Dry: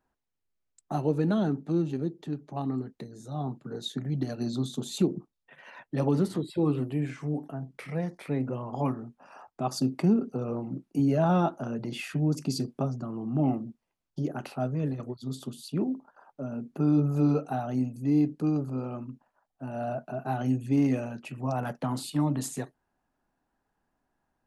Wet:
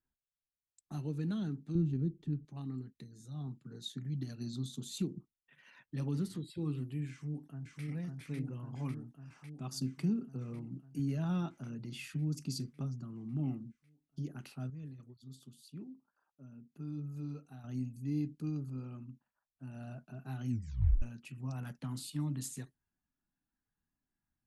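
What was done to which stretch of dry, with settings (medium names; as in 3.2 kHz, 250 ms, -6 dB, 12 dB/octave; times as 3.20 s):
1.75–2.45 s: tilt EQ -3 dB/octave
7.10–7.84 s: echo throw 550 ms, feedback 75%, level -2 dB
14.70–17.64 s: gain -8 dB
20.49 s: tape stop 0.53 s
whole clip: spectral noise reduction 6 dB; amplifier tone stack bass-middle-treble 6-0-2; trim +8.5 dB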